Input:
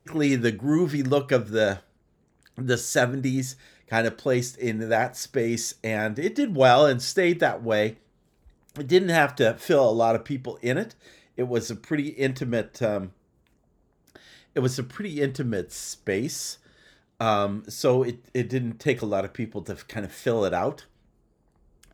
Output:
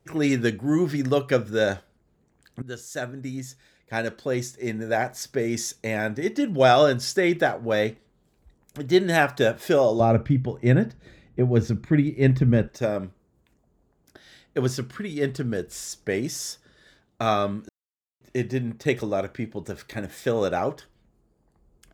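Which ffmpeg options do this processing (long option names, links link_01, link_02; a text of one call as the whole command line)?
ffmpeg -i in.wav -filter_complex "[0:a]asettb=1/sr,asplit=3[link_01][link_02][link_03];[link_01]atrim=end=10.004[link_04];[link_02]atrim=start=10:end=12.68,asetpts=PTS-STARTPTS,afade=type=in:duration=0.004:curve=qsin,afade=type=out:start_time=2.676:duration=0.004:curve=qsin,bass=frequency=250:gain=14,treble=frequency=4000:gain=-10[link_05];[link_03]atrim=start=12.676[link_06];[link_04][link_05]acrossfade=duration=0.004:curve1=hsin:curve2=qsin[link_07];[link_07][link_06]acrossfade=duration=0.004:curve1=qsin:curve2=hsin,asplit=4[link_08][link_09][link_10][link_11];[link_08]atrim=end=2.62,asetpts=PTS-STARTPTS,afade=type=out:start_time=2.616:duration=0.004:curve=hsin:silence=0.199526[link_12];[link_09]atrim=start=2.62:end=17.69,asetpts=PTS-STARTPTS,afade=type=in:duration=3.91:curve=qsin:silence=0.199526,afade=type=out:start_time=15.066:duration=0.004:curve=hsin[link_13];[link_10]atrim=start=17.69:end=18.21,asetpts=PTS-STARTPTS,volume=0[link_14];[link_11]atrim=start=18.21,asetpts=PTS-STARTPTS,afade=type=in:duration=0.004:curve=hsin[link_15];[link_12][link_13][link_14][link_15]concat=n=4:v=0:a=1" out.wav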